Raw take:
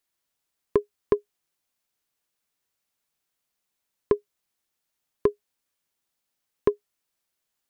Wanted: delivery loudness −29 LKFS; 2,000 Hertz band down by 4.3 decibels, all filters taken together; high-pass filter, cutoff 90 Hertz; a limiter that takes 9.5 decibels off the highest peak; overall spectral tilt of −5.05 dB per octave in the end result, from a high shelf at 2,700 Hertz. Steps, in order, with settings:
high-pass filter 90 Hz
parametric band 2,000 Hz −7 dB
high-shelf EQ 2,700 Hz +4.5 dB
level +7.5 dB
brickwall limiter −8.5 dBFS

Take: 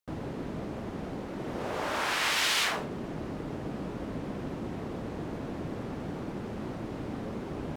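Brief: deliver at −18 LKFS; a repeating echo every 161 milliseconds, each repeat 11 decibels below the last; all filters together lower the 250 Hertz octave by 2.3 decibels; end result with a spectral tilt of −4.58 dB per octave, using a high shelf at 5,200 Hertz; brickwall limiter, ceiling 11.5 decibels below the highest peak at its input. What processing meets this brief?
parametric band 250 Hz −3 dB
high-shelf EQ 5,200 Hz +4 dB
brickwall limiter −26 dBFS
repeating echo 161 ms, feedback 28%, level −11 dB
level +19 dB

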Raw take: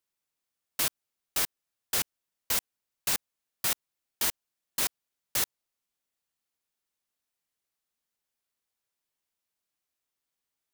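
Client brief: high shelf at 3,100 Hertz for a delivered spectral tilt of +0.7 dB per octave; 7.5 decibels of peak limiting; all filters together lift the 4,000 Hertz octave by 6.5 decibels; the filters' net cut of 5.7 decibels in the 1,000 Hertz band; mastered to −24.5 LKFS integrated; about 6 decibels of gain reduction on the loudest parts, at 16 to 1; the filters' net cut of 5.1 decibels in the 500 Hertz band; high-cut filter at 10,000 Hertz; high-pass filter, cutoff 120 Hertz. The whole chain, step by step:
high-pass filter 120 Hz
low-pass filter 10,000 Hz
parametric band 500 Hz −4.5 dB
parametric band 1,000 Hz −7.5 dB
high-shelf EQ 3,100 Hz +6 dB
parametric band 4,000 Hz +4 dB
downward compressor 16 to 1, threshold −27 dBFS
level +12 dB
brickwall limiter −10 dBFS

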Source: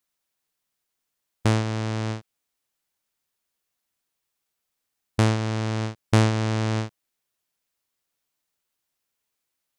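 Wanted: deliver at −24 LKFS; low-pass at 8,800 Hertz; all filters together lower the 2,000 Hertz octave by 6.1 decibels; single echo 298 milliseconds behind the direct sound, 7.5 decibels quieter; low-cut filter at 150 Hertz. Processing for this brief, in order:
high-pass filter 150 Hz
low-pass filter 8,800 Hz
parametric band 2,000 Hz −8 dB
single-tap delay 298 ms −7.5 dB
level +4 dB

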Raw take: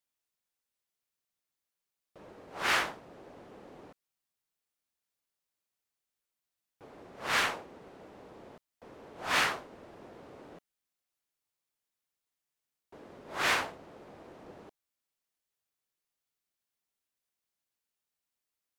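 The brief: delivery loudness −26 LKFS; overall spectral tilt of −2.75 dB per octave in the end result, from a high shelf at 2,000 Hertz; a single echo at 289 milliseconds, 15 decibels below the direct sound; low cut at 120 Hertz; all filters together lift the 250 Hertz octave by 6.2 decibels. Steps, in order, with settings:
high-pass filter 120 Hz
parametric band 250 Hz +8.5 dB
high-shelf EQ 2,000 Hz −5 dB
single-tap delay 289 ms −15 dB
level +7.5 dB

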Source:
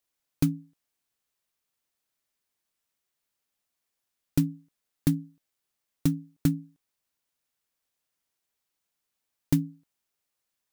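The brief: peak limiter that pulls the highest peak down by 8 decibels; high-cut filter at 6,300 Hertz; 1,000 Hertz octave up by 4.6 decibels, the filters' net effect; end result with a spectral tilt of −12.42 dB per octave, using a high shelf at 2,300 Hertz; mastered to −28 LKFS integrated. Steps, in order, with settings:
low-pass filter 6,300 Hz
parametric band 1,000 Hz +7.5 dB
high-shelf EQ 2,300 Hz −7.5 dB
level +6 dB
brickwall limiter −12 dBFS

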